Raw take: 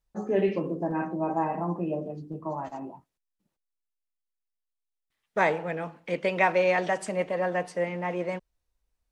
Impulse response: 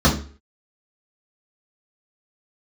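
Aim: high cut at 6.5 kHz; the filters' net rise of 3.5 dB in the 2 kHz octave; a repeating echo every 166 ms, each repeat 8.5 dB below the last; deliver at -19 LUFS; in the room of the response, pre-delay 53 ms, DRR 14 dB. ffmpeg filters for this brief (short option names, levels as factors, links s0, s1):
-filter_complex "[0:a]lowpass=6500,equalizer=f=2000:t=o:g=4,aecho=1:1:166|332|498|664:0.376|0.143|0.0543|0.0206,asplit=2[s0][s1];[1:a]atrim=start_sample=2205,adelay=53[s2];[s1][s2]afir=irnorm=-1:irlink=0,volume=0.0188[s3];[s0][s3]amix=inputs=2:normalize=0,volume=2.37"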